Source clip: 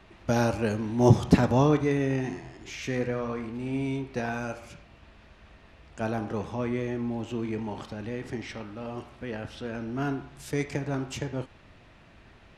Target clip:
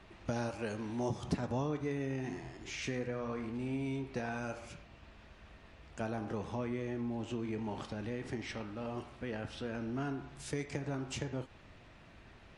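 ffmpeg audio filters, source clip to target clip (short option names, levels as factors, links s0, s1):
-filter_complex "[0:a]asettb=1/sr,asplit=3[s0][s1][s2];[s0]atrim=end=0.494[s3];[s1]atrim=start=0.49:end=1.23,asetpts=PTS-STARTPTS,afade=t=in:d=0.004:c=qsin,afade=t=out:st=0.736:d=0.004:c=qsin,lowshelf=f=330:g=-7.5[s4];[s2]atrim=start=1.226[s5];[s3][s4]acrossfade=d=0.004:c1=hsin:c2=qsin[s6];[s6][s5]acrossfade=d=0.004:c1=qsin:c2=hsin,acompressor=threshold=0.0251:ratio=3,volume=0.75" -ar 24000 -c:a libmp3lame -b:a 48k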